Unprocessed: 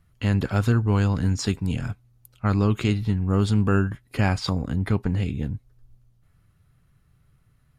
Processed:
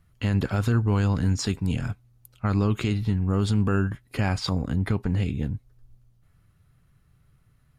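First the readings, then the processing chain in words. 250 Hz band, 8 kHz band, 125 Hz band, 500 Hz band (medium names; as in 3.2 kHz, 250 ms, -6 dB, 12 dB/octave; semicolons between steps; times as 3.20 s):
-1.5 dB, 0.0 dB, -1.5 dB, -2.5 dB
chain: peak limiter -13.5 dBFS, peak gain reduction 4.5 dB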